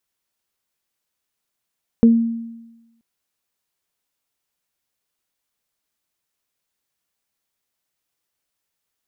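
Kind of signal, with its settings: additive tone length 0.98 s, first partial 230 Hz, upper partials -9 dB, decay 1.07 s, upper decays 0.21 s, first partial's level -6 dB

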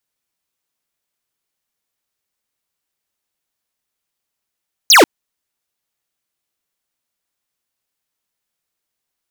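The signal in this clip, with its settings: laser zap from 7 kHz, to 260 Hz, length 0.14 s square, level -6.5 dB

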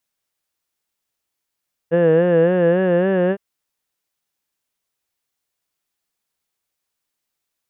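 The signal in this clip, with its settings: formant vowel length 1.46 s, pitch 164 Hz, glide +2.5 st, vibrato 3.6 Hz, F1 490 Hz, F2 1.7 kHz, F3 2.8 kHz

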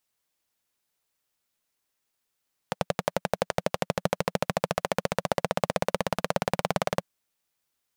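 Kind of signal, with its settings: single-cylinder engine model, changing speed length 4.31 s, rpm 1300, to 2200, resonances 180/550 Hz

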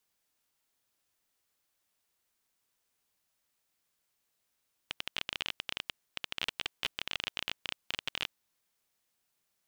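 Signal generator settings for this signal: random clicks 21 per s -15.5 dBFS 3.44 s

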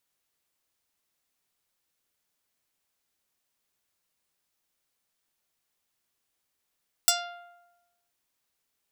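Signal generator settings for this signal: plucked string F5, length 1.03 s, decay 1.07 s, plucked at 0.32, medium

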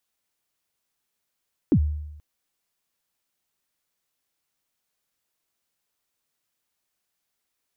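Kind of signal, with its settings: kick drum length 0.48 s, from 360 Hz, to 75 Hz, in 71 ms, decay 0.94 s, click off, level -12.5 dB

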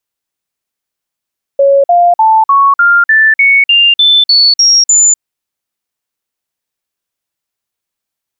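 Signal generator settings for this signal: stepped sine 555 Hz up, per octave 3, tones 12, 0.25 s, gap 0.05 s -3.5 dBFS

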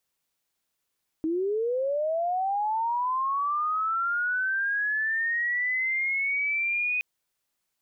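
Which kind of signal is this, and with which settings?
sweep linear 310 Hz -> 2.5 kHz -24 dBFS -> -24 dBFS 5.77 s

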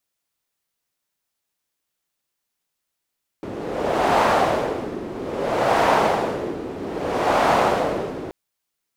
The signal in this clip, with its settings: wind-like swept noise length 4.88 s, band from 350 Hz, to 770 Hz, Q 1.7, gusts 3, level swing 14 dB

